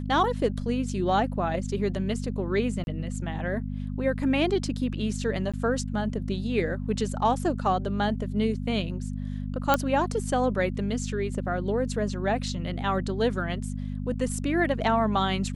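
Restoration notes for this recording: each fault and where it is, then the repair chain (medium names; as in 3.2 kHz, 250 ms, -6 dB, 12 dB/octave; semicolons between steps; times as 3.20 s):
hum 50 Hz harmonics 5 -32 dBFS
2.84–2.87 s: dropout 31 ms
5.52–5.54 s: dropout 16 ms
9.74 s: pop -7 dBFS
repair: de-click; de-hum 50 Hz, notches 5; interpolate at 2.84 s, 31 ms; interpolate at 5.52 s, 16 ms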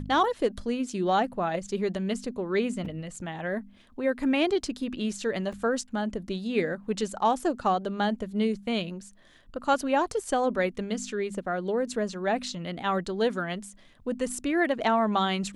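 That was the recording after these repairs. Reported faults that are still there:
nothing left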